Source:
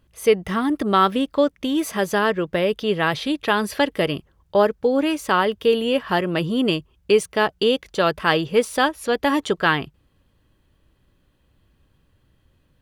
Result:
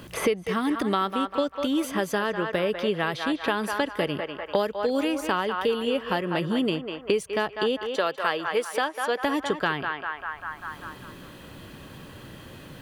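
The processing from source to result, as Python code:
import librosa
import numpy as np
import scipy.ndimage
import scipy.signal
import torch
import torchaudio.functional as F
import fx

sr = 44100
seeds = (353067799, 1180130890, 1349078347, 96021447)

y = fx.highpass(x, sr, hz=410.0, slope=12, at=(7.86, 9.24))
y = fx.echo_banded(y, sr, ms=197, feedback_pct=44, hz=1200.0, wet_db=-6.0)
y = fx.band_squash(y, sr, depth_pct=100)
y = y * 10.0 ** (-7.0 / 20.0)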